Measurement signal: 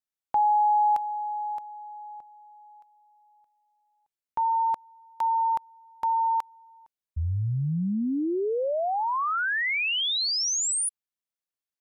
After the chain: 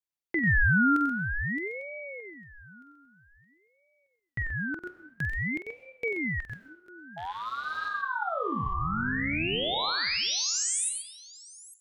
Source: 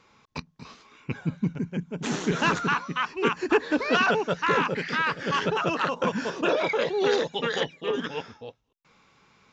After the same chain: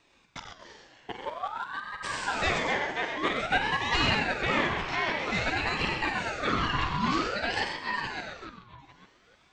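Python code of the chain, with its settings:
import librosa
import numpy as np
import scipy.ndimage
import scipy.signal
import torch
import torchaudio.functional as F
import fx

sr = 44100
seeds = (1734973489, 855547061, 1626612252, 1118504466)

p1 = fx.rattle_buzz(x, sr, strikes_db=-29.0, level_db=-31.0)
p2 = fx.low_shelf(p1, sr, hz=140.0, db=-10.5)
p3 = p2 + fx.echo_multitap(p2, sr, ms=(47, 93, 131, 850), db=(-9.0, -7.5, -7.5, -18.5), dry=0)
p4 = fx.rev_freeverb(p3, sr, rt60_s=0.83, hf_ratio=0.7, predelay_ms=75, drr_db=10.0)
p5 = fx.ring_lfo(p4, sr, carrier_hz=990.0, swing_pct=45, hz=0.51)
y = p5 * librosa.db_to_amplitude(-1.5)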